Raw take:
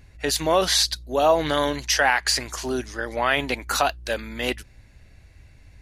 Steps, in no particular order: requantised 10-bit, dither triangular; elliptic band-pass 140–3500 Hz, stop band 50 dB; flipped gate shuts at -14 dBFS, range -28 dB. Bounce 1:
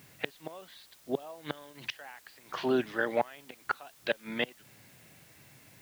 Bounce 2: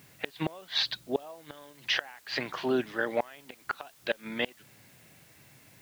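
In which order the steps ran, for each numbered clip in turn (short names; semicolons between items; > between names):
flipped gate > elliptic band-pass > requantised; elliptic band-pass > flipped gate > requantised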